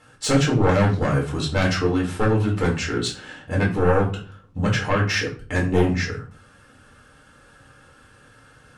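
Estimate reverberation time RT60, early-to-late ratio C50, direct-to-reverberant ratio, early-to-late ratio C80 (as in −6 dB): 0.40 s, 9.0 dB, −3.0 dB, 14.5 dB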